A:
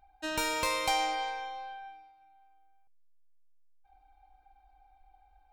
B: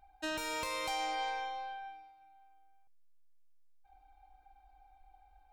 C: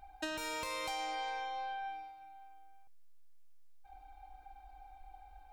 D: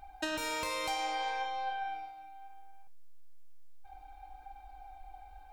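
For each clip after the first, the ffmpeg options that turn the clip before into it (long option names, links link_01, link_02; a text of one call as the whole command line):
ffmpeg -i in.wav -af "alimiter=level_in=3dB:limit=-24dB:level=0:latency=1:release=414,volume=-3dB" out.wav
ffmpeg -i in.wav -af "acompressor=threshold=-45dB:ratio=5,volume=7.5dB" out.wav
ffmpeg -i in.wav -af "flanger=delay=7.2:depth=6:regen=80:speed=0.65:shape=sinusoidal,volume=8.5dB" out.wav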